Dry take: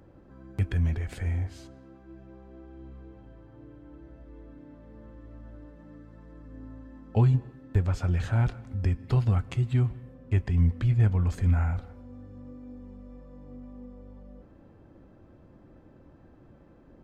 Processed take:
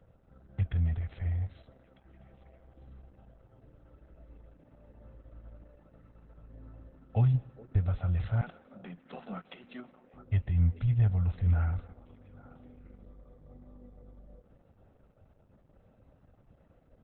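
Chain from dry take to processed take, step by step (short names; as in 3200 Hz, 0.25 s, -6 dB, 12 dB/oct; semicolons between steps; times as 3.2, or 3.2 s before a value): 8.41–10.14 steep high-pass 170 Hz 96 dB/oct; comb 1.5 ms, depth 72%; delay with a stepping band-pass 0.417 s, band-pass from 390 Hz, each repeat 1.4 oct, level -10 dB; gain -6.5 dB; Opus 8 kbps 48000 Hz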